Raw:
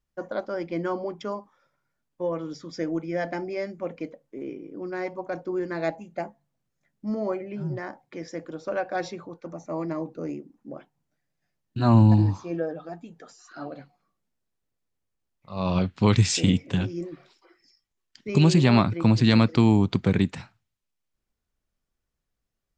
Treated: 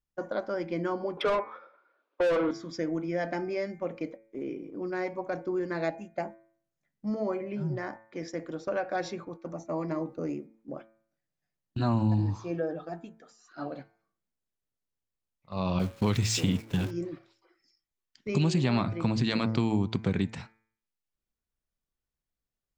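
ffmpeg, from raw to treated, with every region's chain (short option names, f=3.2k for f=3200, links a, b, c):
-filter_complex "[0:a]asettb=1/sr,asplit=3[a][b][c];[a]atrim=end=1.174[d];[b]atrim=start=1.17:end=2.51,asetpts=PTS-STARTPTS,afade=t=in:d=0.004:c=qsin,afade=t=out:st=1.336:d=0.004:c=qsin,highpass=f=330:w=0.5412,highpass=f=330:w=1.3066,equalizer=f=340:t=q:w=4:g=6,equalizer=f=520:t=q:w=4:g=7,equalizer=f=820:t=q:w=4:g=-4,equalizer=f=1.3k:t=q:w=4:g=5,equalizer=f=1.9k:t=q:w=4:g=-8,equalizer=f=3k:t=q:w=4:g=-5,lowpass=f=3.6k:w=0.5412,lowpass=f=3.6k:w=1.3066,asplit=2[e][f];[f]highpass=f=720:p=1,volume=29dB,asoftclip=type=tanh:threshold=-12.5dB[g];[e][g]amix=inputs=2:normalize=0,lowpass=f=1.8k:p=1,volume=-6dB[h];[c]atrim=start=2.506[i];[d][h]acrossfade=d=0.004:c1=hsin:c2=qsin[j];[j][i]acrossfade=d=0.004:c1=qsin:c2=hsin,asettb=1/sr,asplit=3[k][l][m];[k]atrim=end=15.794[n];[l]atrim=start=15.79:end=16.91,asetpts=PTS-STARTPTS,afade=t=in:d=0.004:c=qsin,afade=t=out:st=1.116:d=0.004:c=qsin,aeval=exprs='val(0)+0.5*0.0316*sgn(val(0))':c=same,agate=range=-33dB:threshold=-24dB:ratio=3:release=100:detection=peak[o];[m]atrim=start=16.906[p];[n][o]acrossfade=d=0.004:c1=hsin:c2=qsin[q];[q][p]acrossfade=d=0.004:c1=qsin:c2=hsin,agate=range=-8dB:threshold=-41dB:ratio=16:detection=peak,bandreject=f=111.3:t=h:w=4,bandreject=f=222.6:t=h:w=4,bandreject=f=333.9:t=h:w=4,bandreject=f=445.2:t=h:w=4,bandreject=f=556.5:t=h:w=4,bandreject=f=667.8:t=h:w=4,bandreject=f=779.1:t=h:w=4,bandreject=f=890.4:t=h:w=4,bandreject=f=1.0017k:t=h:w=4,bandreject=f=1.113k:t=h:w=4,bandreject=f=1.2243k:t=h:w=4,bandreject=f=1.3356k:t=h:w=4,bandreject=f=1.4469k:t=h:w=4,bandreject=f=1.5582k:t=h:w=4,bandreject=f=1.6695k:t=h:w=4,bandreject=f=1.7808k:t=h:w=4,bandreject=f=1.8921k:t=h:w=4,bandreject=f=2.0034k:t=h:w=4,bandreject=f=2.1147k:t=h:w=4,bandreject=f=2.226k:t=h:w=4,bandreject=f=2.3373k:t=h:w=4,bandreject=f=2.4486k:t=h:w=4,acompressor=threshold=-28dB:ratio=2"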